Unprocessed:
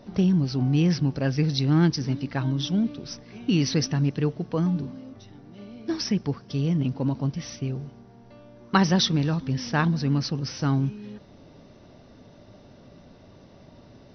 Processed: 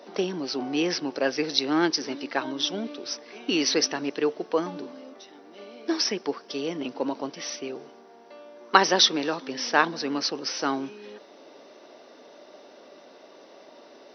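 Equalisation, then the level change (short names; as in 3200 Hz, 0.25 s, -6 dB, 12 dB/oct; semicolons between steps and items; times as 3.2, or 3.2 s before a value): HPF 350 Hz 24 dB/oct; +5.5 dB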